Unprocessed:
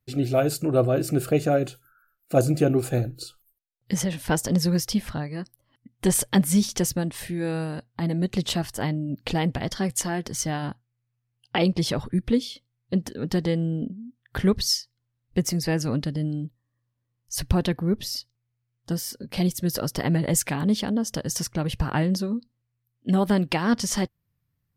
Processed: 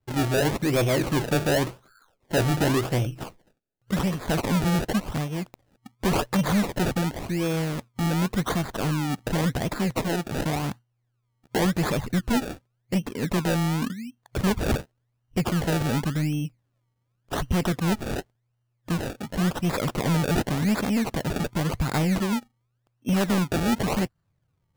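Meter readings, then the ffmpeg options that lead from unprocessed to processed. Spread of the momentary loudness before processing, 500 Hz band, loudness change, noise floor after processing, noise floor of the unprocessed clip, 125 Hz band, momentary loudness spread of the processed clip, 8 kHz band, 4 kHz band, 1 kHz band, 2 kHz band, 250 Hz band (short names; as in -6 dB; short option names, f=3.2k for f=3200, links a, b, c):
10 LU, -1.5 dB, -0.5 dB, -75 dBFS, -78 dBFS, +0.5 dB, 8 LU, -6.5 dB, -2.0 dB, +3.0 dB, +3.5 dB, -0.5 dB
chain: -af "acrusher=samples=29:mix=1:aa=0.000001:lfo=1:lforange=29:lforate=0.9,asoftclip=type=tanh:threshold=-21.5dB,volume=3.5dB"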